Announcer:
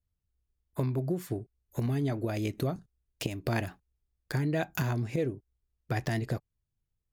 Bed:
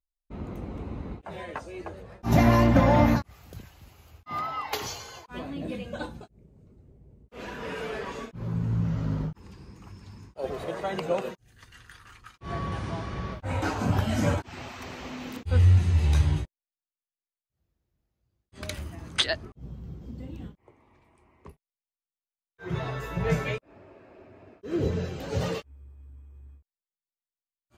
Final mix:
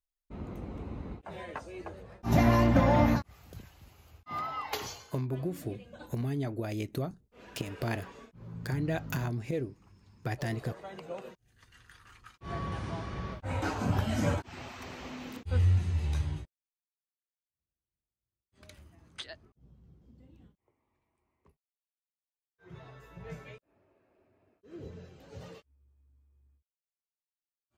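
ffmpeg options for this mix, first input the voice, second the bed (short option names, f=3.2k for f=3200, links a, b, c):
-filter_complex "[0:a]adelay=4350,volume=-3dB[a];[1:a]volume=5.5dB,afade=t=out:st=4.8:d=0.29:silence=0.334965,afade=t=in:st=11.13:d=1.24:silence=0.334965,afade=t=out:st=15.06:d=1.94:silence=0.199526[b];[a][b]amix=inputs=2:normalize=0"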